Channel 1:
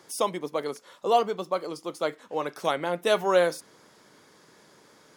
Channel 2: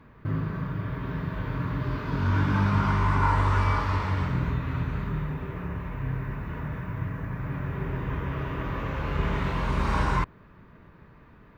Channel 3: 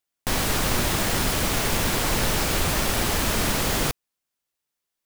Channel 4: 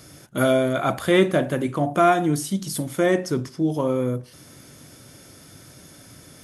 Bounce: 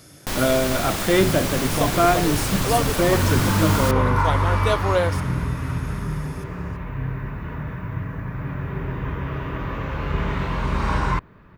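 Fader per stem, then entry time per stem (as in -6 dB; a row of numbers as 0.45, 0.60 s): 0.0, +3.0, -2.5, -1.0 dB; 1.60, 0.95, 0.00, 0.00 s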